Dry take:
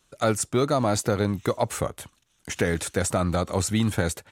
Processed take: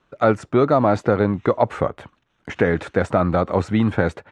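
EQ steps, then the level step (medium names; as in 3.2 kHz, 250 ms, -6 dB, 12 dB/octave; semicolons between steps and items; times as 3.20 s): low-pass 1.8 kHz 12 dB/octave; bass shelf 110 Hz -9 dB; +7.5 dB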